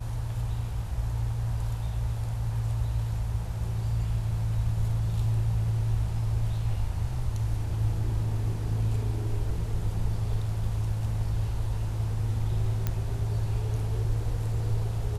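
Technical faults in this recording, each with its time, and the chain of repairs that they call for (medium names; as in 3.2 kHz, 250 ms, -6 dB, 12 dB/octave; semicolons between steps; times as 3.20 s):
12.87 s: pop -15 dBFS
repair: de-click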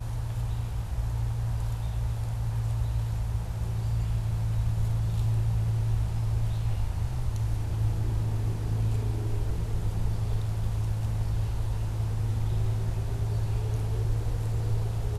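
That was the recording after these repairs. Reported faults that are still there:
nothing left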